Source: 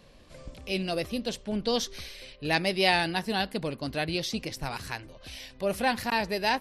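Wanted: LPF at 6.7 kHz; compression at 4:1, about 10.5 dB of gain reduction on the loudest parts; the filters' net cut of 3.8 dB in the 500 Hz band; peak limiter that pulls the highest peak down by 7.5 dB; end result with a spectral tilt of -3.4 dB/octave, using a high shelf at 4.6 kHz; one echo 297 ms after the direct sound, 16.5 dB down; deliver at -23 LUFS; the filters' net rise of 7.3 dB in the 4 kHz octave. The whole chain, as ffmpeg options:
-af "lowpass=6700,equalizer=f=500:t=o:g=-5,equalizer=f=4000:t=o:g=7.5,highshelf=f=4600:g=4,acompressor=threshold=0.0398:ratio=4,alimiter=limit=0.0841:level=0:latency=1,aecho=1:1:297:0.15,volume=3.35"

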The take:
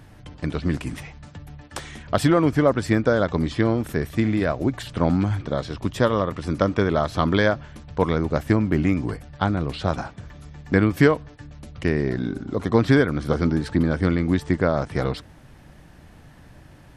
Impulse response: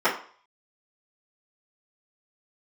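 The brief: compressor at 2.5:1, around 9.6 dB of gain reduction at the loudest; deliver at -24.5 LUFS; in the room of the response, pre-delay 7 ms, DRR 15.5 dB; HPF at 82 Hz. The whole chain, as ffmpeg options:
-filter_complex "[0:a]highpass=82,acompressor=threshold=0.0447:ratio=2.5,asplit=2[s0][s1];[1:a]atrim=start_sample=2205,adelay=7[s2];[s1][s2]afir=irnorm=-1:irlink=0,volume=0.0224[s3];[s0][s3]amix=inputs=2:normalize=0,volume=2"

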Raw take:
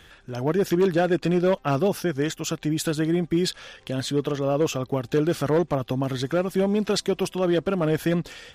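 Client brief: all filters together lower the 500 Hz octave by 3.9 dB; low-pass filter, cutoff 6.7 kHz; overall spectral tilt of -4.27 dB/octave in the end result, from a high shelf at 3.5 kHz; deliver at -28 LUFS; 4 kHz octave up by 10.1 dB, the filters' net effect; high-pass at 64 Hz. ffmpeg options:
-af "highpass=64,lowpass=6700,equalizer=f=500:t=o:g=-5.5,highshelf=f=3500:g=6.5,equalizer=f=4000:t=o:g=8.5,volume=0.668"

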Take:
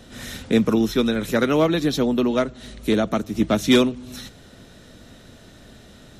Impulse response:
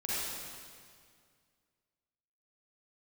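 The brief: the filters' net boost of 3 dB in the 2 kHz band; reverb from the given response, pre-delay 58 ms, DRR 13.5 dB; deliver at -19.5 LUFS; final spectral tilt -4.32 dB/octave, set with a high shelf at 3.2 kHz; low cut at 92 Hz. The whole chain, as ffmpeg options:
-filter_complex "[0:a]highpass=92,equalizer=f=2000:t=o:g=5,highshelf=f=3200:g=-3.5,asplit=2[s0][s1];[1:a]atrim=start_sample=2205,adelay=58[s2];[s1][s2]afir=irnorm=-1:irlink=0,volume=0.106[s3];[s0][s3]amix=inputs=2:normalize=0,volume=1.12"

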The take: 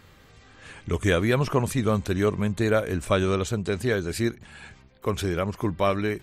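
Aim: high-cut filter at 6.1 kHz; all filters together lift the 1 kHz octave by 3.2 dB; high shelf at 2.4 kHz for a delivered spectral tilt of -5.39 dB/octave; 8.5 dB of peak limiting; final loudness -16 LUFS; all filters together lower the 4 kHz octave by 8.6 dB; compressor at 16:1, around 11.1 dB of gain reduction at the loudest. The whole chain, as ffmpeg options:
-af "lowpass=6100,equalizer=f=1000:t=o:g=5.5,highshelf=f=2400:g=-6,equalizer=f=4000:t=o:g=-5.5,acompressor=threshold=0.0447:ratio=16,volume=11.2,alimiter=limit=0.596:level=0:latency=1"

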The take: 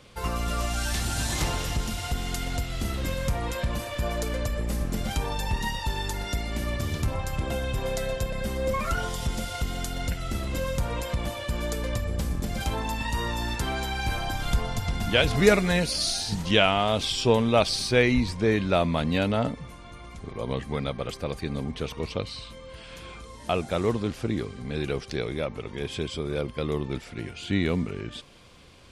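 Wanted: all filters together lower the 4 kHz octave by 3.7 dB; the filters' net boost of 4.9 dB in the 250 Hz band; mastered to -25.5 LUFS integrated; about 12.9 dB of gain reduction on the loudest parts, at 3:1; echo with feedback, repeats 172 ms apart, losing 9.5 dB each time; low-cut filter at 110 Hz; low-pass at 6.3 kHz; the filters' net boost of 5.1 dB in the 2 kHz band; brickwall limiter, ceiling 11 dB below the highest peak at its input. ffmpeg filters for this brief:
-af "highpass=110,lowpass=6300,equalizer=f=250:t=o:g=6.5,equalizer=f=2000:t=o:g=8.5,equalizer=f=4000:t=o:g=-8,acompressor=threshold=0.0398:ratio=3,alimiter=limit=0.075:level=0:latency=1,aecho=1:1:172|344|516|688:0.335|0.111|0.0365|0.012,volume=2.24"

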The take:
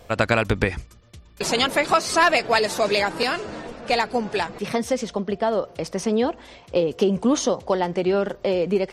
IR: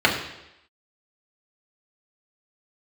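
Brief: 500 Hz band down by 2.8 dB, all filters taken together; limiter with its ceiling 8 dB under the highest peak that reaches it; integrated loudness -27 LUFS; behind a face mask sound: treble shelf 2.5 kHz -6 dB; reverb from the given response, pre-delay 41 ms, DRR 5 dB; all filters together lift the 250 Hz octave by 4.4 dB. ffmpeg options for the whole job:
-filter_complex "[0:a]equalizer=f=250:t=o:g=7,equalizer=f=500:t=o:g=-5.5,alimiter=limit=0.251:level=0:latency=1,asplit=2[s0][s1];[1:a]atrim=start_sample=2205,adelay=41[s2];[s1][s2]afir=irnorm=-1:irlink=0,volume=0.0531[s3];[s0][s3]amix=inputs=2:normalize=0,highshelf=f=2500:g=-6,volume=0.708"

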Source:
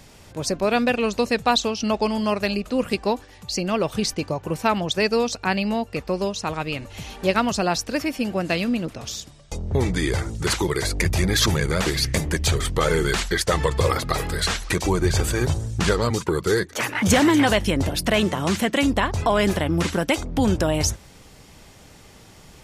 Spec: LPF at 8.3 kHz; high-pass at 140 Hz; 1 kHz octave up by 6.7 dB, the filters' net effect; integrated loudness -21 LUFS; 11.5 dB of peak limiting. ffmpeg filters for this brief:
-af "highpass=140,lowpass=8300,equalizer=f=1000:t=o:g=8.5,volume=1.58,alimiter=limit=0.335:level=0:latency=1"

